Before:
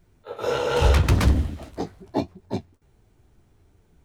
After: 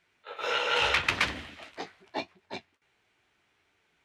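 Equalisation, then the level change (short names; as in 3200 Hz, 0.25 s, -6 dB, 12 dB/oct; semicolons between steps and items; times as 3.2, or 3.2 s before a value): band-pass 2400 Hz, Q 1.5; +7.0 dB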